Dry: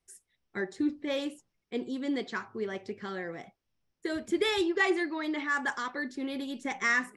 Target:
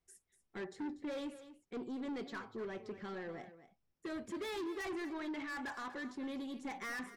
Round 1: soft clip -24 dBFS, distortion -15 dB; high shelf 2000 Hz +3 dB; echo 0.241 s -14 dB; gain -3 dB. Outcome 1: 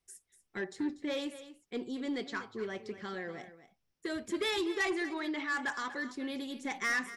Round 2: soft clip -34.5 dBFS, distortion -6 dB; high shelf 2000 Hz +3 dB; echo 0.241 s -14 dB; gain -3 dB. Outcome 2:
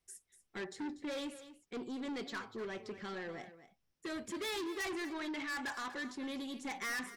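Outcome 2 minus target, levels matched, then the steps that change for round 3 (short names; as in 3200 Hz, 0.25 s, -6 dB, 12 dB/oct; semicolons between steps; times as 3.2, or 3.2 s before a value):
4000 Hz band +5.0 dB
change: high shelf 2000 Hz -6 dB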